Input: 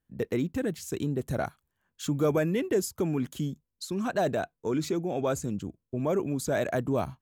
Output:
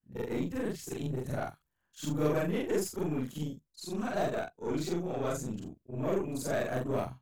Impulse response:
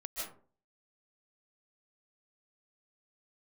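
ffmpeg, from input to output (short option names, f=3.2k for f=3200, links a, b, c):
-af "afftfilt=real='re':imag='-im':win_size=4096:overlap=0.75,aeval=exprs='0.126*(cos(1*acos(clip(val(0)/0.126,-1,1)))-cos(1*PI/2))+0.00708*(cos(8*acos(clip(val(0)/0.126,-1,1)))-cos(8*PI/2))':c=same"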